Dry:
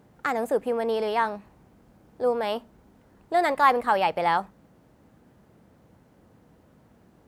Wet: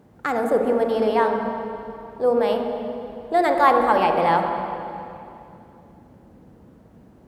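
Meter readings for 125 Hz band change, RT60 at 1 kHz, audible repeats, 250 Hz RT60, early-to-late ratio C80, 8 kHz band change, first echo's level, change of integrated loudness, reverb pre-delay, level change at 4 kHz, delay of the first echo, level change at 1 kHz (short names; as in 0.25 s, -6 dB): +8.5 dB, 2.6 s, none, 2.5 s, 5.0 dB, n/a, none, +4.0 dB, 36 ms, +1.0 dB, none, +4.5 dB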